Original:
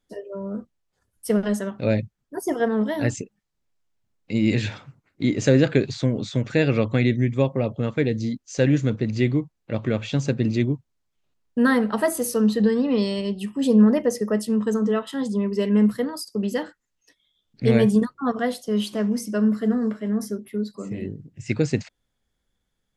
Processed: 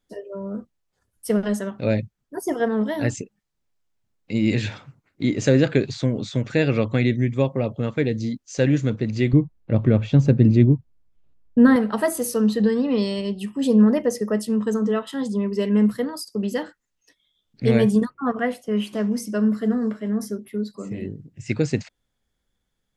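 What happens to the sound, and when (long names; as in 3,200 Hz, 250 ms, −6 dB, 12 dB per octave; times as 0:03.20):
0:09.33–0:11.76: spectral tilt −3 dB per octave
0:18.10–0:18.93: high shelf with overshoot 3,100 Hz −6.5 dB, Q 3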